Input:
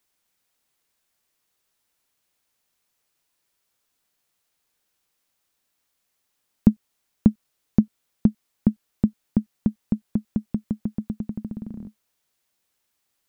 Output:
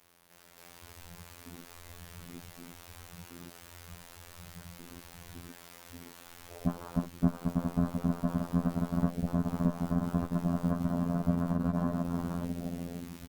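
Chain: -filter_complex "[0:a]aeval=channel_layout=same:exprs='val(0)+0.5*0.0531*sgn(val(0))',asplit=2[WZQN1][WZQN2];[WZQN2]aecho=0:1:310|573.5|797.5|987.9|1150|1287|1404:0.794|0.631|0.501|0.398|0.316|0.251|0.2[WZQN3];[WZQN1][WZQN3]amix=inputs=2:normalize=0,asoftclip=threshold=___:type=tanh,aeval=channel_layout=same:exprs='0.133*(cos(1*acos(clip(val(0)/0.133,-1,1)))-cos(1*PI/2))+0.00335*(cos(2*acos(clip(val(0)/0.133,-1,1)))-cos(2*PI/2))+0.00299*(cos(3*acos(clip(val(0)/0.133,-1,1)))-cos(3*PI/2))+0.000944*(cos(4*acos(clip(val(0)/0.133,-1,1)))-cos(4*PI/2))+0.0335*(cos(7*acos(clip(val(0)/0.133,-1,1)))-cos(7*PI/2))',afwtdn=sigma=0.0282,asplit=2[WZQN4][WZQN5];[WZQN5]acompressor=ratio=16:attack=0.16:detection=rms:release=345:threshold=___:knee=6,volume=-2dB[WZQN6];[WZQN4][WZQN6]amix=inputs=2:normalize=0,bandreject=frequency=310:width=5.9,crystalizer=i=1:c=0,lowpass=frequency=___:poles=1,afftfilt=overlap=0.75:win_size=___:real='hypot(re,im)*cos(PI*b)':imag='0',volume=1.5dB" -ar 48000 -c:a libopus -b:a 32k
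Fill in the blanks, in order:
-17.5dB, -37dB, 1200, 2048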